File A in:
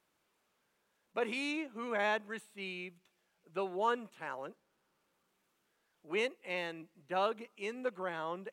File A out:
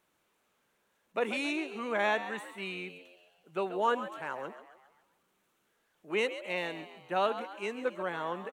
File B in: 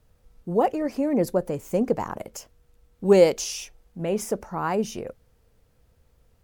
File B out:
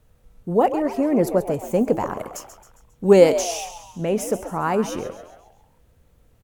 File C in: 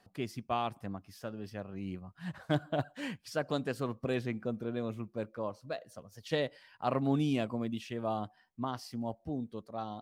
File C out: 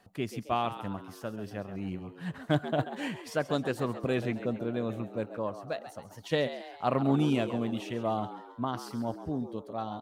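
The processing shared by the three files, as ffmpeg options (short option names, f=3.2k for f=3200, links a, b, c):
-filter_complex "[0:a]equalizer=f=4.9k:t=o:w=0.34:g=-5,asplit=2[a][b];[b]asplit=5[c][d][e][f][g];[c]adelay=135,afreqshift=85,volume=-12dB[h];[d]adelay=270,afreqshift=170,volume=-18.2dB[i];[e]adelay=405,afreqshift=255,volume=-24.4dB[j];[f]adelay=540,afreqshift=340,volume=-30.6dB[k];[g]adelay=675,afreqshift=425,volume=-36.8dB[l];[h][i][j][k][l]amix=inputs=5:normalize=0[m];[a][m]amix=inputs=2:normalize=0,volume=3.5dB"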